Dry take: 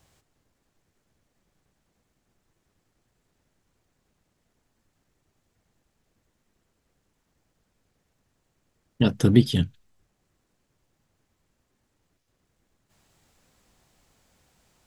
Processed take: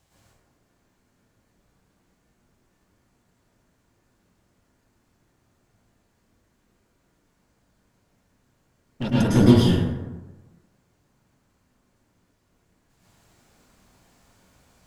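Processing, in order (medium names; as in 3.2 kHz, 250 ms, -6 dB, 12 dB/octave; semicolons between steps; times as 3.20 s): one-sided clip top -27 dBFS; plate-style reverb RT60 1.2 s, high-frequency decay 0.45×, pre-delay 95 ms, DRR -9 dB; trim -3.5 dB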